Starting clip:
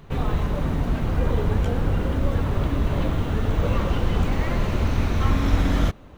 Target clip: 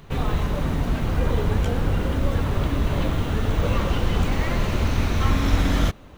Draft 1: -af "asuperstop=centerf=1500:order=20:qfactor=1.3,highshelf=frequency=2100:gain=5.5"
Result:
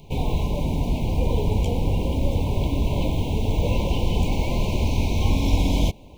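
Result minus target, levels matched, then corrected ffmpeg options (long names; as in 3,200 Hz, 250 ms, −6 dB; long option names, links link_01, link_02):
2,000 Hz band −6.0 dB
-af "highshelf=frequency=2100:gain=5.5"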